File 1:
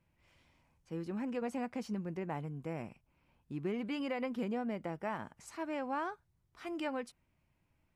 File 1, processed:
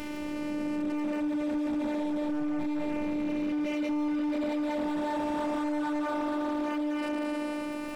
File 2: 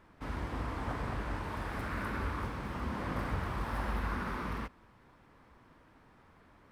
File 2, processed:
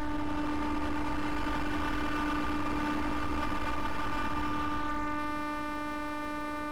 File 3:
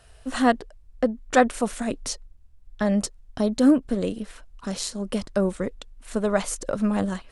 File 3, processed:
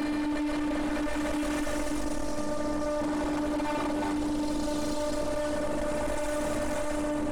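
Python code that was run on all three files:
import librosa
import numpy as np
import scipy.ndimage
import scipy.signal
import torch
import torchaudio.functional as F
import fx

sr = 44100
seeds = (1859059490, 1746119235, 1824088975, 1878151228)

y = fx.spec_blur(x, sr, span_ms=1040.0)
y = y + 0.92 * np.pad(y, (int(6.9 * sr / 1000.0), 0))[:len(y)]
y = fx.fold_sine(y, sr, drive_db=13, ceiling_db=-16.5)
y = fx.robotise(y, sr, hz=297.0)
y = np.clip(10.0 ** (25.0 / 20.0) * y, -1.0, 1.0) / 10.0 ** (25.0 / 20.0)
y = fx.echo_wet_bandpass(y, sr, ms=73, feedback_pct=69, hz=1400.0, wet_db=-18.5)
y = fx.env_flatten(y, sr, amount_pct=70)
y = y * librosa.db_to_amplitude(-2.5)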